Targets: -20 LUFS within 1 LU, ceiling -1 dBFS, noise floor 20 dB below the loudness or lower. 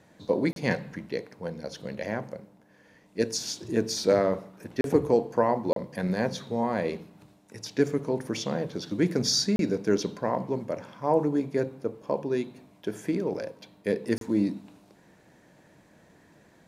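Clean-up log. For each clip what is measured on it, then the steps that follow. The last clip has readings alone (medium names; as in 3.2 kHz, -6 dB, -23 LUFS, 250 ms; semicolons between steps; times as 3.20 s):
dropouts 5; longest dropout 32 ms; loudness -28.5 LUFS; peak level -8.0 dBFS; loudness target -20.0 LUFS
-> interpolate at 0.53/4.81/5.73/9.56/14.18 s, 32 ms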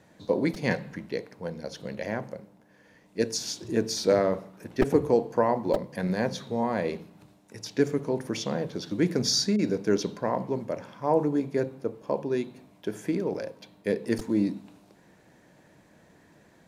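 dropouts 0; loudness -28.5 LUFS; peak level -8.0 dBFS; loudness target -20.0 LUFS
-> trim +8.5 dB; peak limiter -1 dBFS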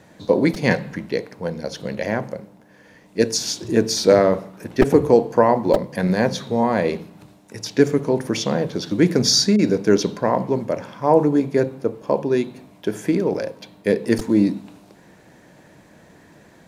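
loudness -20.0 LUFS; peak level -1.0 dBFS; noise floor -50 dBFS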